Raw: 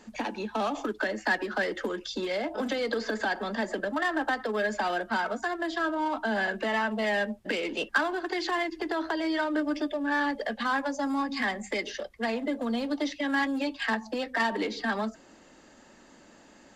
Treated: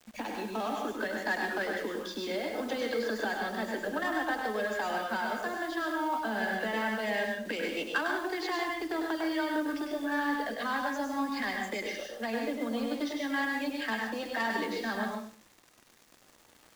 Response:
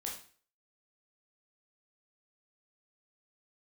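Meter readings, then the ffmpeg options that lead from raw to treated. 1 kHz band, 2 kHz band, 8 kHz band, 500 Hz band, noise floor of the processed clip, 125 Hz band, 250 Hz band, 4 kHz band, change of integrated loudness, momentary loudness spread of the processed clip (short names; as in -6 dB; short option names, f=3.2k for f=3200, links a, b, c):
-2.5 dB, -3.0 dB, -0.5 dB, -3.0 dB, -61 dBFS, n/a, -3.0 dB, -3.0 dB, -3.0 dB, 4 LU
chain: -filter_complex "[0:a]acrusher=bits=7:mix=0:aa=0.000001,asplit=2[a][b];[1:a]atrim=start_sample=2205,adelay=101[c];[b][c]afir=irnorm=-1:irlink=0,volume=-0.5dB[d];[a][d]amix=inputs=2:normalize=0,volume=-5.5dB"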